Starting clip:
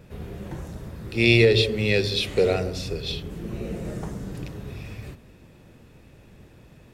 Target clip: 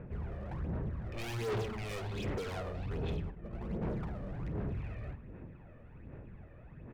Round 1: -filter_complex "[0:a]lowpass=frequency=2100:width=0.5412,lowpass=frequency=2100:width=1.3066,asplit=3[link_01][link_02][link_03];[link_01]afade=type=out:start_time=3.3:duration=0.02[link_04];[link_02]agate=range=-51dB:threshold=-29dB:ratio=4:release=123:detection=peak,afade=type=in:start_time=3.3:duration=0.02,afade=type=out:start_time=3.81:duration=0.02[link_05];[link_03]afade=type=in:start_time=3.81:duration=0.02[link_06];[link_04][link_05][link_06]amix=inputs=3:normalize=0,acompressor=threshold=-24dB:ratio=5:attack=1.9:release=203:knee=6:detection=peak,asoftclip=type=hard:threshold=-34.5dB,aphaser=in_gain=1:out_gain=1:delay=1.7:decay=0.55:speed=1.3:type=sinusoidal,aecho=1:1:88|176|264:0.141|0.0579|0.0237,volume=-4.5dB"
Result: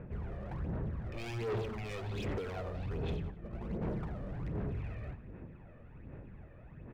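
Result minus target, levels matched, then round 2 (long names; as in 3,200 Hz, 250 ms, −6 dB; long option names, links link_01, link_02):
echo 35 ms late; downward compressor: peak gain reduction +13 dB
-filter_complex "[0:a]lowpass=frequency=2100:width=0.5412,lowpass=frequency=2100:width=1.3066,asplit=3[link_01][link_02][link_03];[link_01]afade=type=out:start_time=3.3:duration=0.02[link_04];[link_02]agate=range=-51dB:threshold=-29dB:ratio=4:release=123:detection=peak,afade=type=in:start_time=3.3:duration=0.02,afade=type=out:start_time=3.81:duration=0.02[link_05];[link_03]afade=type=in:start_time=3.81:duration=0.02[link_06];[link_04][link_05][link_06]amix=inputs=3:normalize=0,asoftclip=type=hard:threshold=-34.5dB,aphaser=in_gain=1:out_gain=1:delay=1.7:decay=0.55:speed=1.3:type=sinusoidal,aecho=1:1:53|106|159:0.141|0.0579|0.0237,volume=-4.5dB"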